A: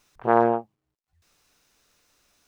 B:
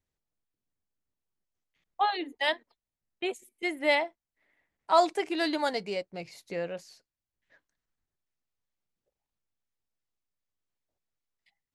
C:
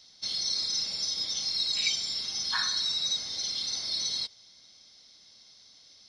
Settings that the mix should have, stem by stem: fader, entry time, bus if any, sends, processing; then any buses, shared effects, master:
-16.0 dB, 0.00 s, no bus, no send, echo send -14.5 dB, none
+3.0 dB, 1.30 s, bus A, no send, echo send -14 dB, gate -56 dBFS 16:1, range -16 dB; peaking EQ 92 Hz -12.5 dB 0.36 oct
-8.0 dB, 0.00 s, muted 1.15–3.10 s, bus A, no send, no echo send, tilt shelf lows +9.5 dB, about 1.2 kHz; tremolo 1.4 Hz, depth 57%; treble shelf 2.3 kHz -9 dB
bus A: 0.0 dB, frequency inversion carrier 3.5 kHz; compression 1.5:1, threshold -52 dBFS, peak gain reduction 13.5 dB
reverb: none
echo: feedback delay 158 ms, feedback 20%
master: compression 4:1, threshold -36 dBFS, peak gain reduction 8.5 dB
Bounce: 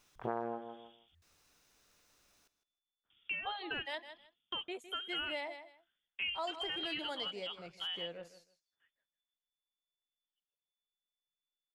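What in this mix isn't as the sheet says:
stem A -16.0 dB -> -4.5 dB; stem C -8.0 dB -> -17.5 dB

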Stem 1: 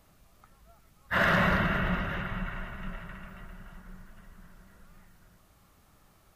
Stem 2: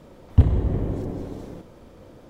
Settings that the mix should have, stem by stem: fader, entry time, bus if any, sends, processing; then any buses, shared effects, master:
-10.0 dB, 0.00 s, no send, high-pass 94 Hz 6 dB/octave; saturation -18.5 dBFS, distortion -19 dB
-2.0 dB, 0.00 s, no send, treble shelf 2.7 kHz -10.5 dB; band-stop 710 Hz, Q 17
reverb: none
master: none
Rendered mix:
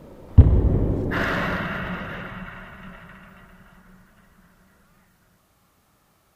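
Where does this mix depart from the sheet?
stem 1 -10.0 dB -> +1.0 dB; stem 2 -2.0 dB -> +4.0 dB

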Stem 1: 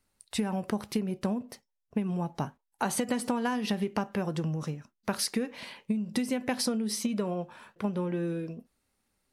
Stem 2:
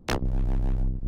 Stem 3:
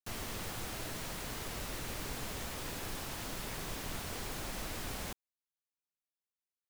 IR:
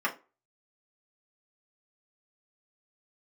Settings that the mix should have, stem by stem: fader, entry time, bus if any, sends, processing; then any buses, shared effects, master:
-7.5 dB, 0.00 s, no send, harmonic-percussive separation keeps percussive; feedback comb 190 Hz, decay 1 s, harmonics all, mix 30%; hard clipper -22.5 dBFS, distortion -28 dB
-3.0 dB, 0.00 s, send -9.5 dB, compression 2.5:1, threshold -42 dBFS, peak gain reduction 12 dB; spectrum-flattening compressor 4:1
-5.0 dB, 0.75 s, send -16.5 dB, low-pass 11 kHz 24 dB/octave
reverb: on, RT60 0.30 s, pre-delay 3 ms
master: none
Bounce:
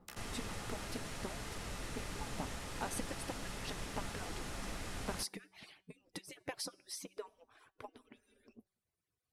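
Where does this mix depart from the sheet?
stem 2 -3.0 dB -> -12.0 dB; stem 3: entry 0.75 s -> 0.10 s; master: extra bass shelf 280 Hz +4.5 dB

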